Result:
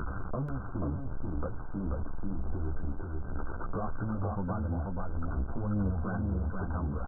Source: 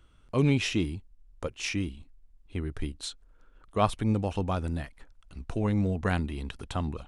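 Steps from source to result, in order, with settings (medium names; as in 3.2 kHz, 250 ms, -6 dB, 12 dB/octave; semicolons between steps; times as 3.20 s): jump at every zero crossing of -32 dBFS; dynamic bell 390 Hz, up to -5 dB, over -41 dBFS, Q 2.3; waveshaping leveller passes 3; compression 10:1, threshold -30 dBFS, peak gain reduction 16.5 dB; chorus voices 2, 1.3 Hz, delay 13 ms, depth 3 ms; brick-wall FIR low-pass 1.6 kHz; on a send: delay 485 ms -3.5 dB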